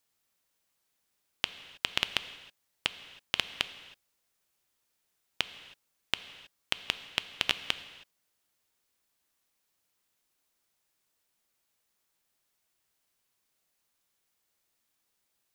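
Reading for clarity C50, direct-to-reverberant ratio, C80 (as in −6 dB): 13.0 dB, 11.5 dB, 14.0 dB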